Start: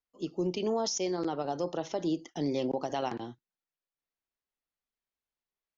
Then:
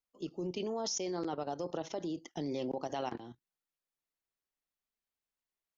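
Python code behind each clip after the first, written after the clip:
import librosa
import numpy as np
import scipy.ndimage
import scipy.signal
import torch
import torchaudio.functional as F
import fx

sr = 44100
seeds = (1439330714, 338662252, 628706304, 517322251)

y = fx.level_steps(x, sr, step_db=12)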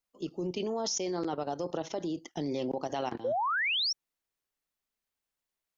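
y = fx.spec_paint(x, sr, seeds[0], shape='rise', start_s=3.24, length_s=0.69, low_hz=470.0, high_hz=5800.0, level_db=-33.0)
y = y * librosa.db_to_amplitude(3.5)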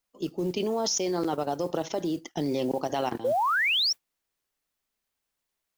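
y = fx.mod_noise(x, sr, seeds[1], snr_db=28)
y = y * librosa.db_to_amplitude(5.0)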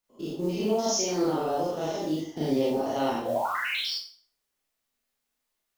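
y = fx.spec_steps(x, sr, hold_ms=100)
y = fx.rev_schroeder(y, sr, rt60_s=0.43, comb_ms=26, drr_db=-5.5)
y = y * librosa.db_to_amplitude(-3.0)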